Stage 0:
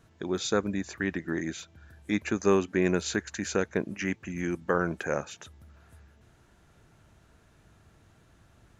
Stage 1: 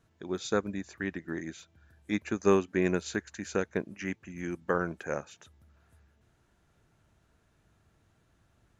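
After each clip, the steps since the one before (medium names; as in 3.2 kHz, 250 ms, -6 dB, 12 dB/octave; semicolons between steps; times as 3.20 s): upward expansion 1.5:1, over -36 dBFS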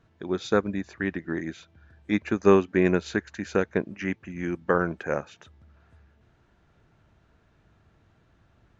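Gaussian low-pass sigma 1.6 samples; trim +6 dB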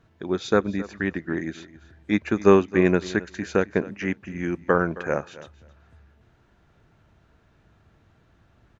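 feedback delay 267 ms, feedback 16%, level -18 dB; trim +2.5 dB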